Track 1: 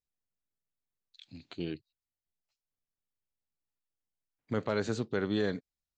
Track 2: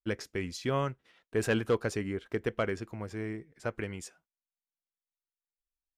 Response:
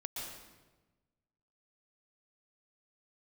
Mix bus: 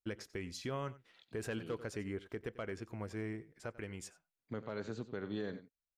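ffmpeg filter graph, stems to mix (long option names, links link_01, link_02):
-filter_complex "[0:a]lowpass=frequency=3800:poles=1,volume=-8.5dB,asplit=3[link_01][link_02][link_03];[link_02]volume=-13.5dB[link_04];[1:a]volume=-3.5dB,asplit=2[link_05][link_06];[link_06]volume=-20.5dB[link_07];[link_03]apad=whole_len=263278[link_08];[link_05][link_08]sidechaincompress=threshold=-43dB:ratio=8:attack=10:release=1190[link_09];[link_04][link_07]amix=inputs=2:normalize=0,aecho=0:1:91:1[link_10];[link_01][link_09][link_10]amix=inputs=3:normalize=0,alimiter=level_in=5.5dB:limit=-24dB:level=0:latency=1:release=260,volume=-5.5dB"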